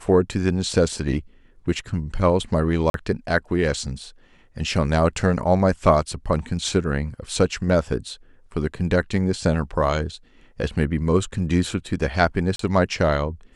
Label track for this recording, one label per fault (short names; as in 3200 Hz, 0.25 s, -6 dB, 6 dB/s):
2.900000	2.940000	gap 42 ms
12.560000	12.590000	gap 33 ms